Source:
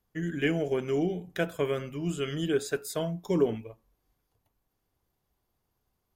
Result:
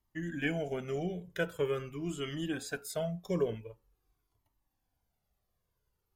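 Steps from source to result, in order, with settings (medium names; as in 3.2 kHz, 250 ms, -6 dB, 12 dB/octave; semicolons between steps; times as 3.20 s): Shepard-style flanger falling 0.45 Hz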